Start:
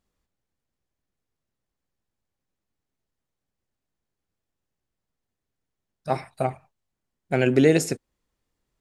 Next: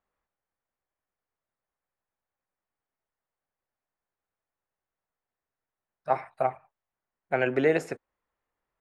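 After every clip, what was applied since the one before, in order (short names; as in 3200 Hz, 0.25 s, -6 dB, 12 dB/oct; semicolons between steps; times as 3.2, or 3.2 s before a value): three-band isolator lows -15 dB, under 540 Hz, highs -21 dB, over 2200 Hz; gain +2.5 dB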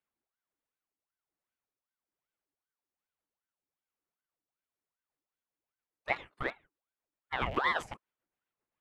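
rattling part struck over -42 dBFS, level -30 dBFS; rotary speaker horn 1.2 Hz, later 7.5 Hz, at 4.73; ring modulator with a swept carrier 920 Hz, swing 70%, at 2.6 Hz; gain -2 dB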